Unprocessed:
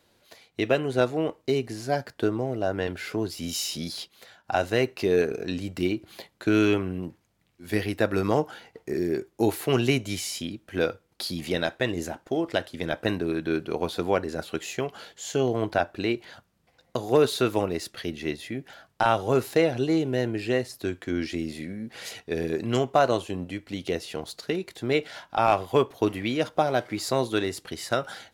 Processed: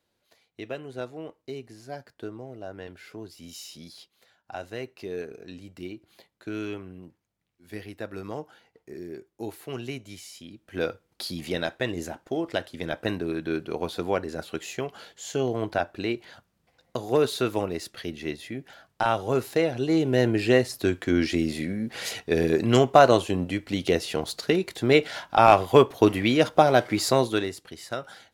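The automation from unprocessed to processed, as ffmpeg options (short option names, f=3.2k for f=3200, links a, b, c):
-af "volume=5.5dB,afade=t=in:st=10.45:d=0.44:silence=0.316228,afade=t=in:st=19.8:d=0.48:silence=0.421697,afade=t=out:st=27.02:d=0.58:silence=0.251189"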